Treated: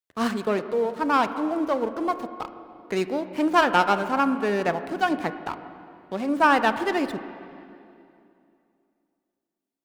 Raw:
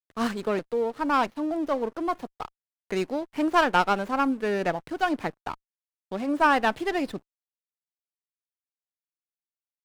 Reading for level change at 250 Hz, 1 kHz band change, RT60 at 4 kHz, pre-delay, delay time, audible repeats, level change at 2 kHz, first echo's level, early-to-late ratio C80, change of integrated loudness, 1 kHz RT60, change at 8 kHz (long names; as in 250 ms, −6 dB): +2.5 dB, +2.5 dB, 2.3 s, 22 ms, no echo audible, no echo audible, +2.5 dB, no echo audible, 12.0 dB, +2.0 dB, 2.5 s, +2.0 dB